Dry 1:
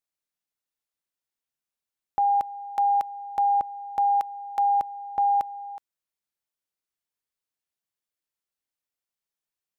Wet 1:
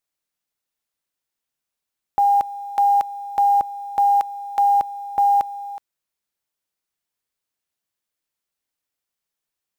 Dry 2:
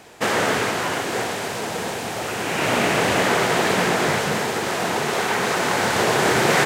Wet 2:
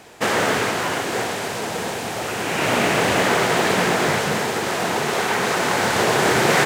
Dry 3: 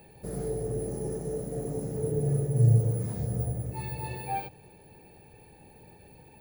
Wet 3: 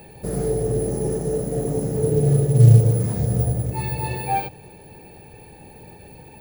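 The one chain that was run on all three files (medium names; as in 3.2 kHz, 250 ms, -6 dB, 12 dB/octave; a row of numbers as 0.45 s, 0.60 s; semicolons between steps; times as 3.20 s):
short-mantissa float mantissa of 4-bit; normalise loudness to -20 LUFS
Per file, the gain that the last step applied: +5.5 dB, +1.0 dB, +9.5 dB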